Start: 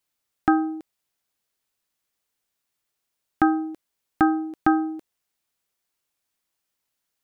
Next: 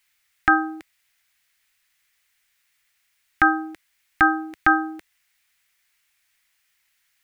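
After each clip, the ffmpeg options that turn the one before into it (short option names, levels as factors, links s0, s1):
-af "equalizer=f=125:t=o:w=1:g=-5,equalizer=f=250:t=o:w=1:g=-12,equalizer=f=500:t=o:w=1:g=-11,equalizer=f=1000:t=o:w=1:g=-4,equalizer=f=2000:t=o:w=1:g=11,alimiter=level_in=4.47:limit=0.891:release=50:level=0:latency=1,volume=0.668"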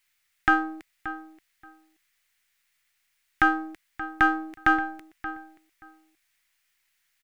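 -filter_complex "[0:a]aeval=exprs='if(lt(val(0),0),0.708*val(0),val(0))':c=same,asplit=2[s0][s1];[s1]adelay=578,lowpass=f=2100:p=1,volume=0.237,asplit=2[s2][s3];[s3]adelay=578,lowpass=f=2100:p=1,volume=0.17[s4];[s0][s2][s4]amix=inputs=3:normalize=0,volume=0.75"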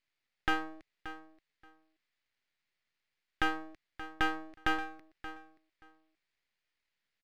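-af "aresample=11025,aresample=44100,aeval=exprs='max(val(0),0)':c=same,volume=0.398"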